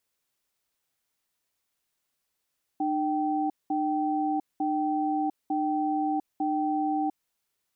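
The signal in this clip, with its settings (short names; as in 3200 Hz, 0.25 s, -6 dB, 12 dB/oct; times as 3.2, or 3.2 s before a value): cadence 303 Hz, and 775 Hz, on 0.70 s, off 0.20 s, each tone -27 dBFS 4.41 s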